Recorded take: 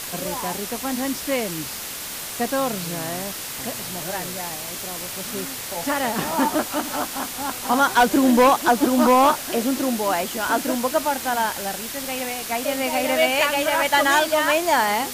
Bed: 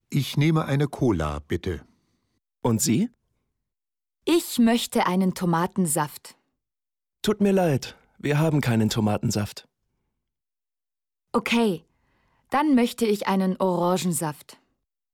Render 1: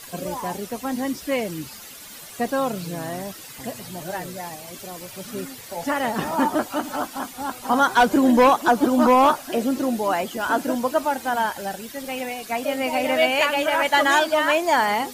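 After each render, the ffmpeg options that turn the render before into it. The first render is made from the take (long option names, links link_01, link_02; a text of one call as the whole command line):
ffmpeg -i in.wav -af "afftdn=noise_reduction=12:noise_floor=-32" out.wav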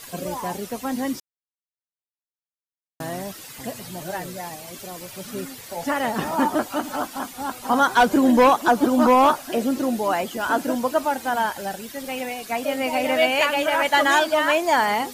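ffmpeg -i in.wav -filter_complex "[0:a]asplit=3[link_01][link_02][link_03];[link_01]atrim=end=1.2,asetpts=PTS-STARTPTS,afade=type=out:start_time=1.196:duration=0.004:curve=hsin[link_04];[link_02]atrim=start=1.2:end=3,asetpts=PTS-STARTPTS,volume=0[link_05];[link_03]atrim=start=3,asetpts=PTS-STARTPTS,afade=type=in:duration=0.004:curve=hsin[link_06];[link_04][link_05][link_06]concat=n=3:v=0:a=1" out.wav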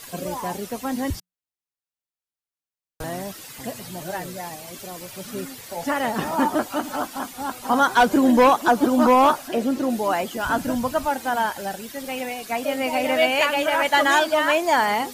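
ffmpeg -i in.wav -filter_complex "[0:a]asettb=1/sr,asplit=3[link_01][link_02][link_03];[link_01]atrim=end=1.104[link_04];[link_02]atrim=start=1.1:end=3.04,asetpts=PTS-STARTPTS,afade=type=in:duration=0.004:curve=qsin,afade=type=out:start_time=1.936:duration=0.004:curve=qsin,afreqshift=-180[link_05];[link_03]atrim=start=3.036[link_06];[link_04][link_05]acrossfade=duration=0.004:curve1=hsin:curve2=qsin[link_07];[link_07][link_06]acrossfade=duration=0.004:curve1=qsin:curve2=hsin,asettb=1/sr,asplit=3[link_08][link_09][link_10];[link_08]atrim=end=9.484[link_11];[link_09]atrim=start=9.48:end=9.9,asetpts=PTS-STARTPTS,afade=type=in:duration=0.004:curve=qsin,afade=type=out:start_time=0.416:duration=0.004:curve=qsin,highshelf=frequency=5600:gain=-5.5[link_12];[link_10]atrim=start=9.896[link_13];[link_11][link_12]acrossfade=duration=0.004:curve1=hsin:curve2=qsin[link_14];[link_14][link_13]acrossfade=duration=0.004:curve1=qsin:curve2=hsin,asplit=3[link_15][link_16][link_17];[link_15]afade=type=out:start_time=10.43:duration=0.02[link_18];[link_16]asubboost=boost=8.5:cutoff=120,afade=type=in:start_time=10.43:duration=0.02,afade=type=out:start_time=11.07:duration=0.02[link_19];[link_17]afade=type=in:start_time=11.07:duration=0.02[link_20];[link_18][link_19][link_20]amix=inputs=3:normalize=0" out.wav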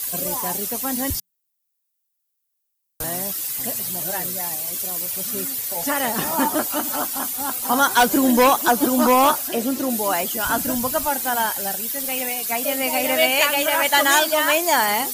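ffmpeg -i in.wav -af "aemphasis=mode=production:type=75fm" out.wav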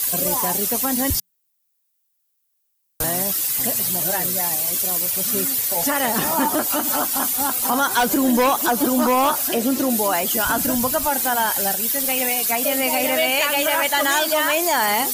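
ffmpeg -i in.wav -af "acontrast=30,alimiter=limit=-10.5dB:level=0:latency=1:release=114" out.wav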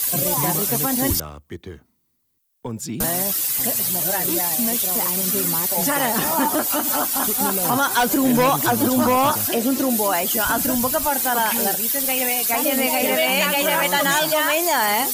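ffmpeg -i in.wav -i bed.wav -filter_complex "[1:a]volume=-7.5dB[link_01];[0:a][link_01]amix=inputs=2:normalize=0" out.wav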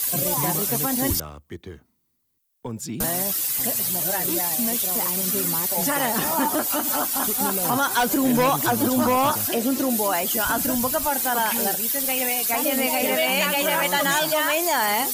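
ffmpeg -i in.wav -af "volume=-2.5dB" out.wav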